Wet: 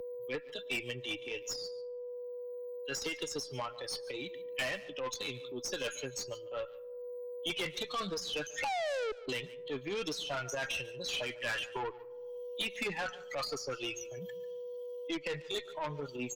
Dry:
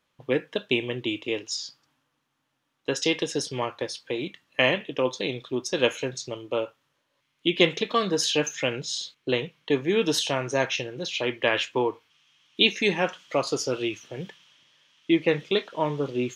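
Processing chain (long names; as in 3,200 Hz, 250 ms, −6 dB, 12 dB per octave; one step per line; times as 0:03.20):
spectral dynamics exaggerated over time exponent 2
RIAA equalisation recording
sound drawn into the spectrogram fall, 0:08.64–0:09.12, 420–860 Hz −18 dBFS
high-shelf EQ 2,100 Hz +6.5 dB
transient designer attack −12 dB, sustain +3 dB
downward compressor 6 to 1, threshold −22 dBFS, peak gain reduction 9.5 dB
treble cut that deepens with the level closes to 2,000 Hz, closed at −25.5 dBFS
steady tone 490 Hz −49 dBFS
tube saturation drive 33 dB, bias 0.3
single-tap delay 144 ms −20 dB
on a send at −24 dB: convolution reverb RT60 0.95 s, pre-delay 65 ms
on the sum: multiband upward and downward compressor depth 70%
level +2 dB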